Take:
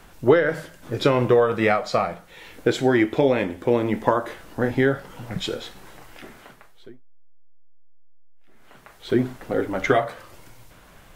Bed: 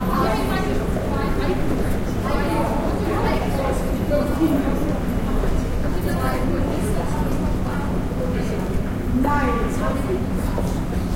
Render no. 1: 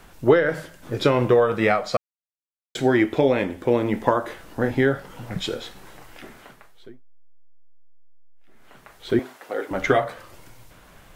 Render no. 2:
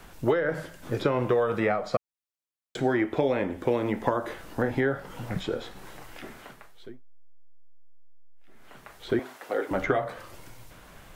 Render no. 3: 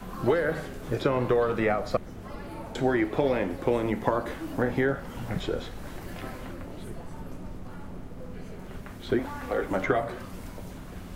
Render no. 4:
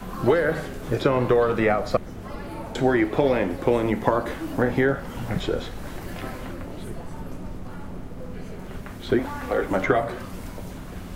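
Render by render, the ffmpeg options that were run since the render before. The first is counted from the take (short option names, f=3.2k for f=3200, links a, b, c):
-filter_complex "[0:a]asettb=1/sr,asplit=3[a][b][c];[a]atrim=end=9.194[d];[b]atrim=start=9.19:end=9.71,asetpts=PTS-STARTPTS,afade=t=in:d=0.004:c=qsin,afade=t=out:st=0.516:d=0.004:c=qsin,highpass=520[e];[c]atrim=start=9.706[f];[d][e]acrossfade=d=0.004:c1=hsin:c2=qsin[g];[g][f]acrossfade=d=0.004:c1=qsin:c2=hsin,asplit=3[h][i][j];[h]atrim=end=1.97,asetpts=PTS-STARTPTS,afade=t=out:st=1.966:d=0.004:c=hsin[k];[i]atrim=start=1.97:end=2.75,asetpts=PTS-STARTPTS,volume=0[l];[j]atrim=start=2.75,asetpts=PTS-STARTPTS,afade=t=in:d=0.004:c=hsin[m];[k][l][m]concat=n=3:v=0:a=1"
-filter_complex "[0:a]acrossover=split=530|1800[a][b][c];[a]acompressor=threshold=-26dB:ratio=4[d];[b]acompressor=threshold=-27dB:ratio=4[e];[c]acompressor=threshold=-44dB:ratio=4[f];[d][e][f]amix=inputs=3:normalize=0"
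-filter_complex "[1:a]volume=-18.5dB[a];[0:a][a]amix=inputs=2:normalize=0"
-af "volume=4.5dB"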